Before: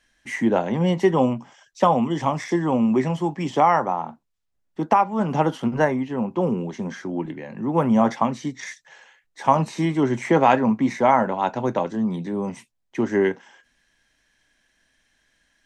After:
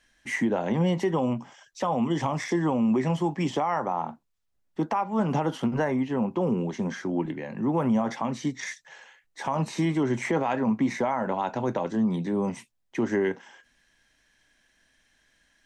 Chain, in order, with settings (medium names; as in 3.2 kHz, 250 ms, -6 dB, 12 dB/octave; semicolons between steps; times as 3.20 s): compression 2.5:1, threshold -20 dBFS, peak gain reduction 7 dB; peak limiter -16.5 dBFS, peak gain reduction 9 dB